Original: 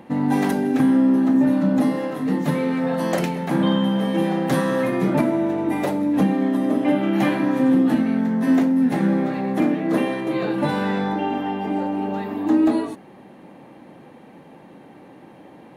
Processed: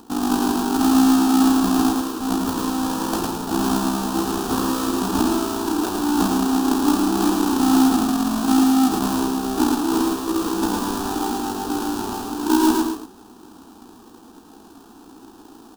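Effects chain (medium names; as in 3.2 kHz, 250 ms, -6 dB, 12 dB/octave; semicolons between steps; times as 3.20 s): square wave that keeps the level; AM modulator 59 Hz, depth 50%; static phaser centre 560 Hz, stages 6; delay 110 ms -4.5 dB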